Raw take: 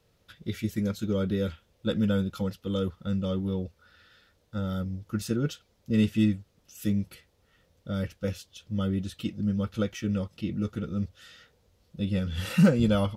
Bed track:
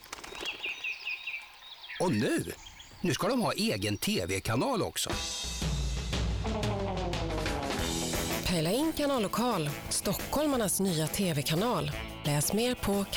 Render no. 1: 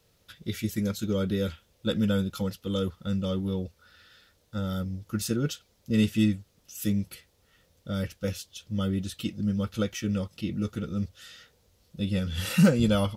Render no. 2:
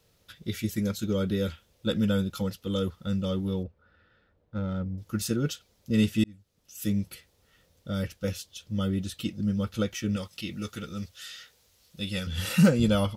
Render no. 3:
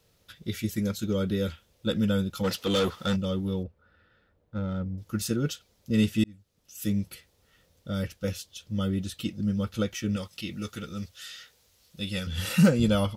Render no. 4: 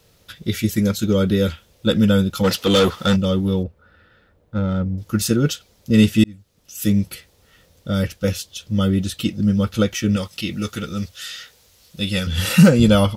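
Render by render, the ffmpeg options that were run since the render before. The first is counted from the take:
-af "highshelf=f=3.8k:g=8"
-filter_complex "[0:a]asettb=1/sr,asplit=3[a][b][c];[a]atrim=end=3.634[d];[b]atrim=start=3.63:end=4.98,asetpts=PTS-STARTPTS,afade=t=in:d=0.004:c=qsin,afade=t=out:st=1.346:d=0.004:c=qsin,adynamicsmooth=sensitivity=2.5:basefreq=1.4k[e];[c]atrim=start=4.976[f];[d][e]acrossfade=d=0.004:c1=hsin:c2=qsin[g];[g][f]acrossfade=d=0.004:c1=qsin:c2=hsin,asettb=1/sr,asplit=3[h][i][j];[h]atrim=end=10.164[k];[i]atrim=start=10.16:end=12.27,asetpts=PTS-STARTPTS,afade=t=in:d=0.004:c=qsin,afade=t=out:st=2.106:d=0.004:c=qsin,tiltshelf=f=900:g=-6.5[l];[j]atrim=start=12.266[m];[k][l]acrossfade=d=0.004:c1=hsin:c2=qsin[n];[n][m]acrossfade=d=0.004:c1=qsin:c2=hsin,asplit=2[o][p];[o]atrim=end=6.24,asetpts=PTS-STARTPTS,afade=t=out:st=6.236:d=0.004:c=hsin[q];[p]atrim=start=6.24,asetpts=PTS-STARTPTS,afade=t=in:d=0.73[r];[q][r]concat=n=2:v=0:a=1"
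-filter_complex "[0:a]asplit=3[a][b][c];[a]afade=t=out:st=2.43:d=0.02[d];[b]asplit=2[e][f];[f]highpass=f=720:p=1,volume=22dB,asoftclip=type=tanh:threshold=-17dB[g];[e][g]amix=inputs=2:normalize=0,lowpass=f=6.3k:p=1,volume=-6dB,afade=t=in:st=2.43:d=0.02,afade=t=out:st=3.15:d=0.02[h];[c]afade=t=in:st=3.15:d=0.02[i];[d][h][i]amix=inputs=3:normalize=0"
-af "volume=10dB,alimiter=limit=-2dB:level=0:latency=1"

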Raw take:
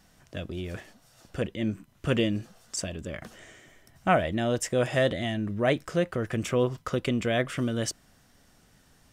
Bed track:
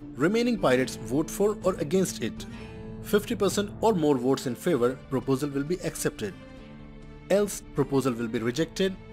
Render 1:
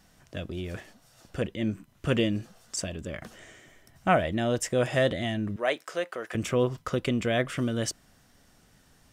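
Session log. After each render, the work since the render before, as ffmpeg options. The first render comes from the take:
-filter_complex "[0:a]asettb=1/sr,asplit=3[a][b][c];[a]atrim=end=5.564[d];[b]atrim=start=5.56:end=6.35,asetpts=PTS-STARTPTS,afade=t=in:d=0.004:c=qsin,afade=t=out:st=0.786:d=0.004:c=qsin,highpass=540[e];[c]atrim=start=6.346[f];[d][e]acrossfade=d=0.004:c1=hsin:c2=qsin[g];[g][f]acrossfade=d=0.004:c1=qsin:c2=hsin"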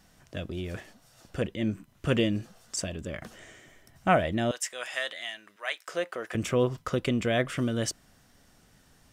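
-filter_complex "[0:a]asettb=1/sr,asplit=3[a][b][c];[a]atrim=end=4.514[d];[b]atrim=start=4.51:end=5.88,asetpts=PTS-STARTPTS,afade=t=in:d=0.004:c=qsin,afade=t=out:st=1.366:d=0.004:c=qsin,highpass=1.3k[e];[c]atrim=start=5.876[f];[d][e]acrossfade=d=0.004:c1=hsin:c2=qsin[g];[g][f]acrossfade=d=0.004:c1=qsin:c2=hsin"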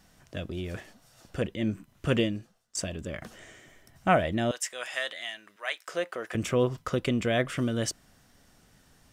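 -filter_complex "[0:a]asplit=2[a][b];[a]atrim=end=2.75,asetpts=PTS-STARTPTS,afade=t=out:st=2.2:d=0.55:c=qua:silence=0.0749894[c];[b]atrim=start=2.75,asetpts=PTS-STARTPTS,afade=t=in:d=0.004:c=hsin:silence=0.0749894[d];[c][d]concat=n=2:v=0:a=1"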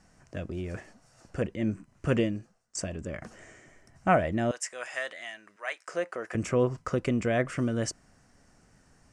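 -af "lowpass=f=8.8k:w=0.5412,lowpass=f=8.8k:w=1.3066,equalizer=f=3.5k:w=2.4:g=-13"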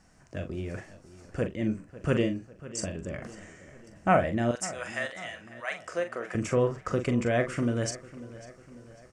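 -filter_complex "[0:a]asplit=2[a][b];[b]adelay=42,volume=-8dB[c];[a][c]amix=inputs=2:normalize=0,asplit=2[d][e];[e]adelay=547,lowpass=f=4.6k:p=1,volume=-17dB,asplit=2[f][g];[g]adelay=547,lowpass=f=4.6k:p=1,volume=0.52,asplit=2[h][i];[i]adelay=547,lowpass=f=4.6k:p=1,volume=0.52,asplit=2[j][k];[k]adelay=547,lowpass=f=4.6k:p=1,volume=0.52,asplit=2[l][m];[m]adelay=547,lowpass=f=4.6k:p=1,volume=0.52[n];[d][f][h][j][l][n]amix=inputs=6:normalize=0"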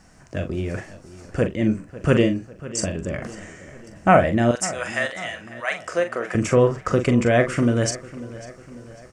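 -af "volume=8.5dB,alimiter=limit=-3dB:level=0:latency=1"

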